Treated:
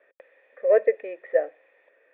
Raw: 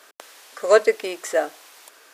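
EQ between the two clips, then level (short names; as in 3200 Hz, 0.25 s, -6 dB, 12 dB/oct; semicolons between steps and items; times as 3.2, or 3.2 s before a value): dynamic EQ 600 Hz, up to +4 dB, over -25 dBFS, Q 0.9; vocal tract filter e; +3.0 dB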